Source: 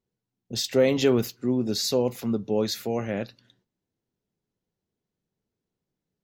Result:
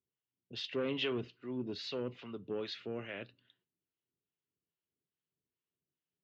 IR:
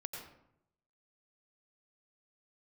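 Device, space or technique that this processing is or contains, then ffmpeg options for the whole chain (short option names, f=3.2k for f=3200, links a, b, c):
guitar amplifier with harmonic tremolo: -filter_complex "[0:a]acrossover=split=590[a][b];[a]aeval=exprs='val(0)*(1-0.7/2+0.7/2*cos(2*PI*2.4*n/s))':c=same[c];[b]aeval=exprs='val(0)*(1-0.7/2-0.7/2*cos(2*PI*2.4*n/s))':c=same[d];[c][d]amix=inputs=2:normalize=0,asoftclip=type=tanh:threshold=-19.5dB,highpass=84,equalizer=f=110:t=q:w=4:g=-5,equalizer=f=210:t=q:w=4:g=-9,equalizer=f=520:t=q:w=4:g=-5,equalizer=f=780:t=q:w=4:g=-8,equalizer=f=2.9k:t=q:w=4:g=9,lowpass=f=3.6k:w=0.5412,lowpass=f=3.6k:w=1.3066,volume=-6dB"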